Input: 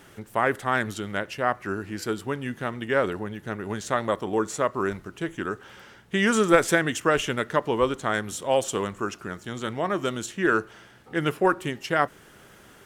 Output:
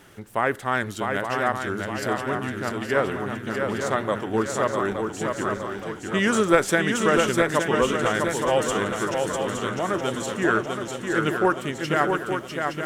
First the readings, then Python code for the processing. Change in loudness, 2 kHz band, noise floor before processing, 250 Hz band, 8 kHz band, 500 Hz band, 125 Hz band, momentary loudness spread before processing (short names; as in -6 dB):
+2.0 dB, +2.0 dB, -52 dBFS, +2.5 dB, +2.5 dB, +2.5 dB, +2.5 dB, 10 LU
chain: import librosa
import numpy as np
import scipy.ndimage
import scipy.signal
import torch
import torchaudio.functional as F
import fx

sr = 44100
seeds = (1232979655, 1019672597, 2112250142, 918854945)

y = fx.echo_swing(x, sr, ms=868, ratio=3, feedback_pct=50, wet_db=-4.5)
y = fx.wow_flutter(y, sr, seeds[0], rate_hz=2.1, depth_cents=15.0)